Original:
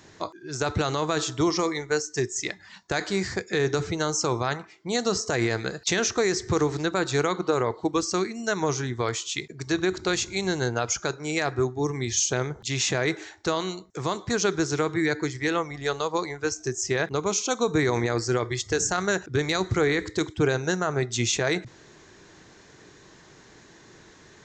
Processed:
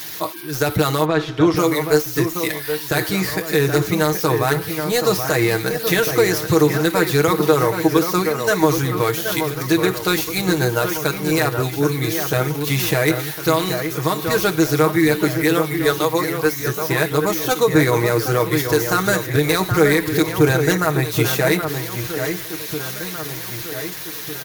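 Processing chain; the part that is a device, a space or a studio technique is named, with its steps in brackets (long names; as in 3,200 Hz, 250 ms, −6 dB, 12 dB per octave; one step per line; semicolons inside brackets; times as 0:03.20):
budget class-D amplifier (gap after every zero crossing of 0.067 ms; spike at every zero crossing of −24.5 dBFS)
0:01.04–0:01.56: low-pass filter 2,600 Hz → 4,300 Hz 12 dB per octave
comb filter 6.4 ms
delay that swaps between a low-pass and a high-pass 776 ms, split 2,400 Hz, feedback 69%, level −7 dB
level +5.5 dB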